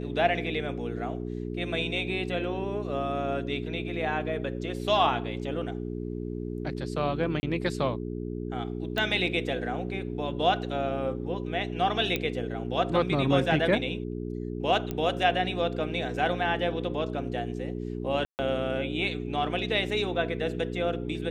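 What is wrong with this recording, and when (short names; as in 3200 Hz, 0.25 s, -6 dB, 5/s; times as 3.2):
hum 60 Hz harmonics 7 -34 dBFS
7.4–7.43 gap 30 ms
8.98 pop -16 dBFS
12.16 pop -14 dBFS
14.91 pop -18 dBFS
18.25–18.39 gap 0.139 s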